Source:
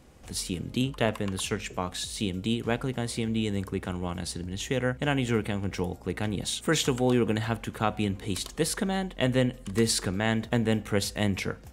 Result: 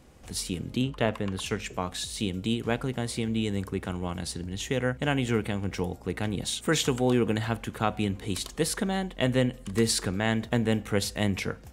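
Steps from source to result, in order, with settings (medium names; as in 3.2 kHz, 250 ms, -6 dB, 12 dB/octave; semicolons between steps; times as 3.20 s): 0.76–1.46 s: treble shelf 6.4 kHz -10 dB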